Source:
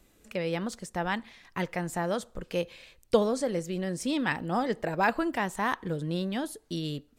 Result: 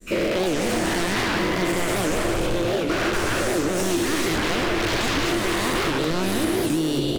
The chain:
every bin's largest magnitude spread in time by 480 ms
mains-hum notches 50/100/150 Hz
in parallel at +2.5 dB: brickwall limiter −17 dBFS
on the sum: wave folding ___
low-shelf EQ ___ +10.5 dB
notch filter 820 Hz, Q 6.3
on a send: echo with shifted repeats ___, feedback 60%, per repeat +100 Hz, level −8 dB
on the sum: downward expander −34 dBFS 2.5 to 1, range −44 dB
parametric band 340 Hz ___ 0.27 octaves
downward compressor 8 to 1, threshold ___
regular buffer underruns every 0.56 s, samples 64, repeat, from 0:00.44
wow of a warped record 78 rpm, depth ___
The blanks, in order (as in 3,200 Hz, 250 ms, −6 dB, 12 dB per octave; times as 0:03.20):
−16.5 dBFS, 62 Hz, 124 ms, +12 dB, −19 dBFS, 250 cents